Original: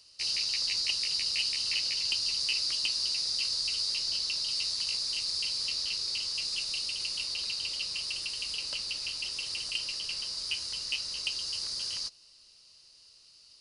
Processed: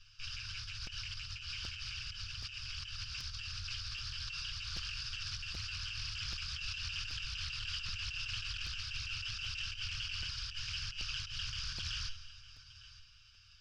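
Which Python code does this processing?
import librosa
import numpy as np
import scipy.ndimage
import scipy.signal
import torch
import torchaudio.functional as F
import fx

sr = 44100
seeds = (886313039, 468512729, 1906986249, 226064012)

p1 = fx.lower_of_two(x, sr, delay_ms=6.6)
p2 = scipy.signal.sosfilt(scipy.signal.butter(4, 4400.0, 'lowpass', fs=sr, output='sos'), p1)
p3 = fx.low_shelf(p2, sr, hz=390.0, db=5.0)
p4 = fx.fixed_phaser(p3, sr, hz=2900.0, stages=8)
p5 = fx.comb_fb(p4, sr, f0_hz=80.0, decay_s=0.77, harmonics='all', damping=0.0, mix_pct=50)
p6 = fx.echo_feedback(p5, sr, ms=164, feedback_pct=45, wet_db=-15.0)
p7 = fx.over_compress(p6, sr, threshold_db=-49.0, ratio=-1.0)
p8 = scipy.signal.sosfilt(scipy.signal.ellip(3, 1.0, 40, [100.0, 1600.0], 'bandstop', fs=sr, output='sos'), p7)
p9 = p8 + fx.echo_single(p8, sr, ms=907, db=-17.0, dry=0)
p10 = fx.buffer_crackle(p9, sr, first_s=0.86, period_s=0.78, block=256, kind='repeat')
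p11 = fx.doppler_dist(p10, sr, depth_ms=0.41)
y = F.gain(torch.from_numpy(p11), 10.0).numpy()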